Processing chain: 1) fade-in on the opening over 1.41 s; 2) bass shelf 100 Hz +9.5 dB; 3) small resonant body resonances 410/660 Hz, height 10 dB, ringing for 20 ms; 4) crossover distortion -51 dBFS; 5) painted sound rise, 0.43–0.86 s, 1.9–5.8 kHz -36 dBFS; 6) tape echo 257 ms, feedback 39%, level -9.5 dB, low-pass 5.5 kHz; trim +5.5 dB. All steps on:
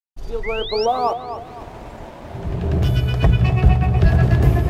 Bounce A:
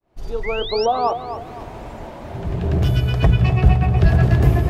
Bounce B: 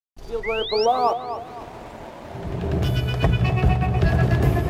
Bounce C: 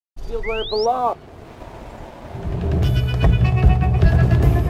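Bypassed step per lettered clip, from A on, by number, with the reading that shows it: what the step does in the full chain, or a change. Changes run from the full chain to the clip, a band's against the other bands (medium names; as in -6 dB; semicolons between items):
4, momentary loudness spread change -1 LU; 2, 125 Hz band -4.5 dB; 6, echo-to-direct -12.0 dB to none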